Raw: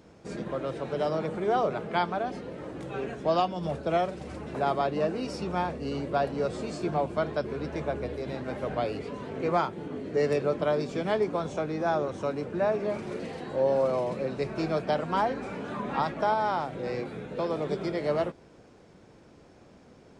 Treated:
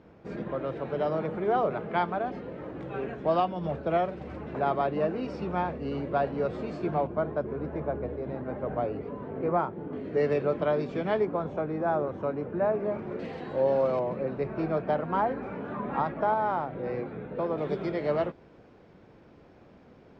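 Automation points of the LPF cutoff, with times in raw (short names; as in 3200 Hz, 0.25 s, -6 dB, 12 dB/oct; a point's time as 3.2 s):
2500 Hz
from 7.07 s 1300 Hz
from 9.93 s 2800 Hz
from 11.25 s 1600 Hz
from 13.19 s 3500 Hz
from 13.99 s 1800 Hz
from 17.58 s 3200 Hz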